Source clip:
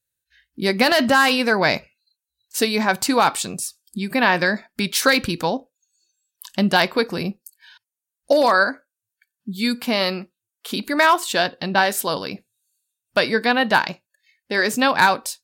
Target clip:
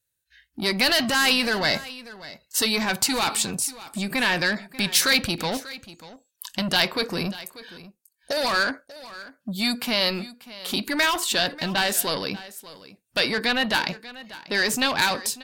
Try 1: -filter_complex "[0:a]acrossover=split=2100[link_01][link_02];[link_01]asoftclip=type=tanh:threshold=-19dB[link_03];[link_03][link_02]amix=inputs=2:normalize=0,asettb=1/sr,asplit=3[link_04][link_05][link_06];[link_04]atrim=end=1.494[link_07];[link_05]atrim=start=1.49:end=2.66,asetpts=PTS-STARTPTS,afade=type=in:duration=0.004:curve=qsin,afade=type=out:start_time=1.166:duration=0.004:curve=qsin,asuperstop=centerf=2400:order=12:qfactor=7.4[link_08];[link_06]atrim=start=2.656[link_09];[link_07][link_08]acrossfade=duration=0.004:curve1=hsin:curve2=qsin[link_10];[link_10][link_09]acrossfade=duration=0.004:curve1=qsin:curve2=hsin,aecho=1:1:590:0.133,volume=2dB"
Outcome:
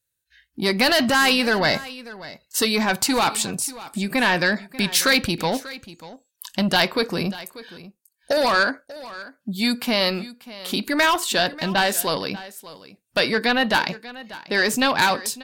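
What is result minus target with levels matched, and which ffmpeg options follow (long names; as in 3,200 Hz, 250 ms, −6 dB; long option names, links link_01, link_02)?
soft clipping: distortion −4 dB
-filter_complex "[0:a]acrossover=split=2100[link_01][link_02];[link_01]asoftclip=type=tanh:threshold=-26.5dB[link_03];[link_03][link_02]amix=inputs=2:normalize=0,asettb=1/sr,asplit=3[link_04][link_05][link_06];[link_04]atrim=end=1.494[link_07];[link_05]atrim=start=1.49:end=2.66,asetpts=PTS-STARTPTS,afade=type=in:duration=0.004:curve=qsin,afade=type=out:start_time=1.166:duration=0.004:curve=qsin,asuperstop=centerf=2400:order=12:qfactor=7.4[link_08];[link_06]atrim=start=2.656[link_09];[link_07][link_08]acrossfade=duration=0.004:curve1=hsin:curve2=qsin[link_10];[link_10][link_09]acrossfade=duration=0.004:curve1=qsin:curve2=hsin,aecho=1:1:590:0.133,volume=2dB"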